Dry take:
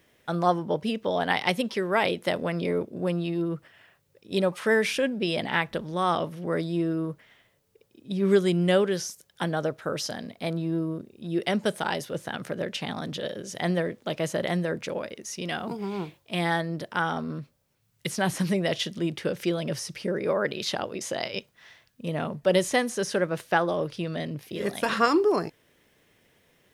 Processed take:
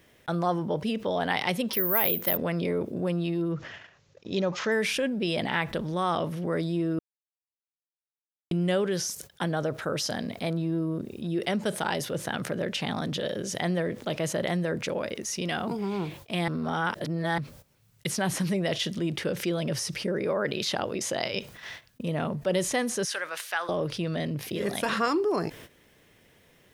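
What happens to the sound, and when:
1.73–2.37 s: careless resampling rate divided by 3×, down filtered, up zero stuff
3.52–4.72 s: careless resampling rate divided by 3×, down none, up filtered
6.99–8.51 s: mute
16.48–17.38 s: reverse
23.05–23.69 s: high-pass 1.3 kHz
whole clip: bass shelf 140 Hz +3.5 dB; gate -52 dBFS, range -28 dB; level flattener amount 50%; trim -6.5 dB

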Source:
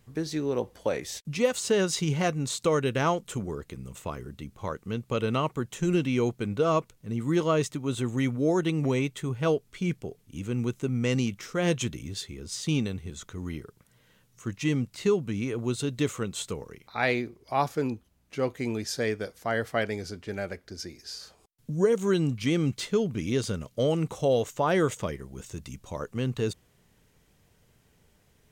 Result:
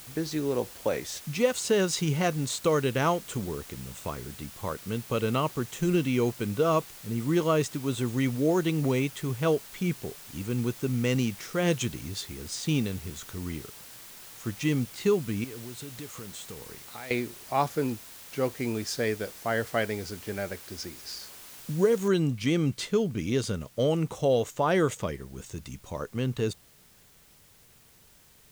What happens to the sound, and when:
15.44–17.11 s: compression 5:1, threshold -39 dBFS
22.08 s: noise floor step -47 dB -59 dB

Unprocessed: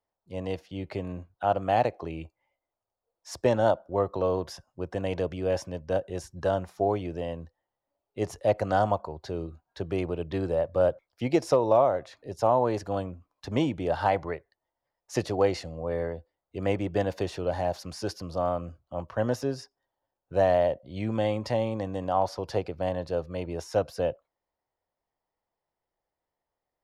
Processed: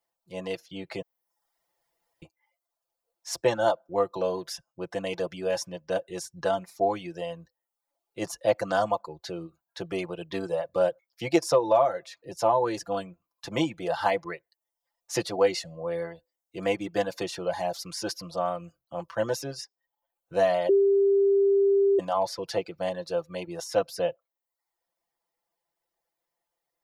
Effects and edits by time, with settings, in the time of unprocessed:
1.02–2.22 s: room tone
20.69–21.99 s: bleep 396 Hz -12 dBFS
whole clip: reverb removal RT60 0.62 s; tilt EQ +2 dB/octave; comb 5.9 ms, depth 74%

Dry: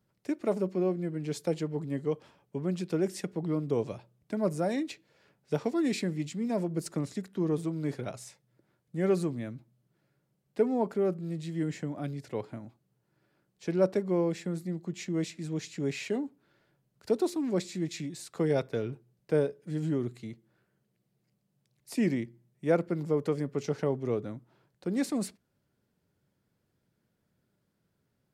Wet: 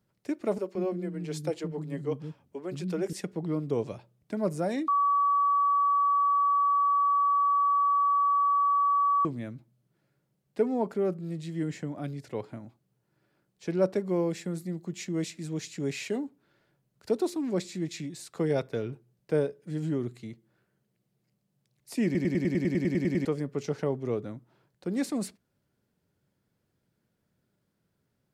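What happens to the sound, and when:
0.58–3.13 s: bands offset in time highs, lows 170 ms, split 270 Hz
4.88–9.25 s: bleep 1.14 kHz -21 dBFS
14.03–16.25 s: treble shelf 6.4 kHz +6 dB
22.05 s: stutter in place 0.10 s, 12 plays

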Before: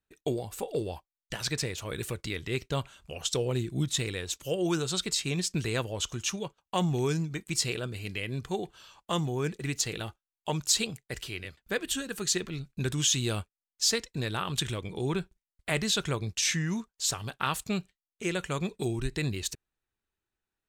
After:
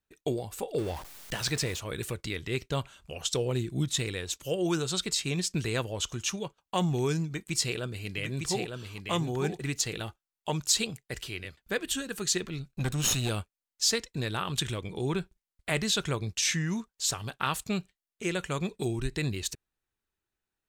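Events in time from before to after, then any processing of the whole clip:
0.78–1.78 s: jump at every zero crossing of -37.5 dBFS
7.27–9.73 s: delay 904 ms -4.5 dB
12.69–13.29 s: comb filter that takes the minimum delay 0.74 ms

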